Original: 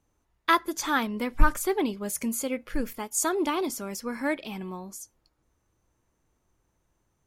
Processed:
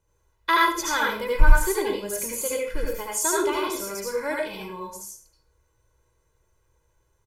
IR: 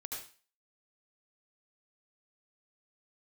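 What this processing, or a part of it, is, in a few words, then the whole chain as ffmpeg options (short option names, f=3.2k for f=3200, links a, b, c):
microphone above a desk: -filter_complex "[0:a]aecho=1:1:2:0.85[a];[1:a]atrim=start_sample=2205[b];[a][b]afir=irnorm=-1:irlink=0,volume=3dB"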